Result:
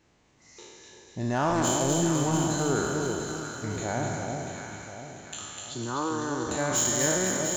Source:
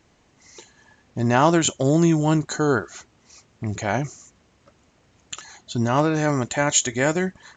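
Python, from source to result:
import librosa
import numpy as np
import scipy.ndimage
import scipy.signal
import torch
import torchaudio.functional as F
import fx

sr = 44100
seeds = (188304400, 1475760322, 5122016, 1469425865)

p1 = fx.spec_trails(x, sr, decay_s=1.66)
p2 = fx.fixed_phaser(p1, sr, hz=660.0, stages=6, at=(5.74, 6.49))
p3 = 10.0 ** (-9.0 / 20.0) * np.tanh(p2 / 10.0 ** (-9.0 / 20.0))
p4 = p3 + fx.echo_alternate(p3, sr, ms=346, hz=870.0, feedback_pct=64, wet_db=-4, dry=0)
p5 = fx.dynamic_eq(p4, sr, hz=2600.0, q=1.2, threshold_db=-38.0, ratio=4.0, max_db=-7)
p6 = fx.echo_wet_highpass(p5, sr, ms=251, feedback_pct=57, hz=2100.0, wet_db=-3.0)
y = p6 * librosa.db_to_amplitude(-8.0)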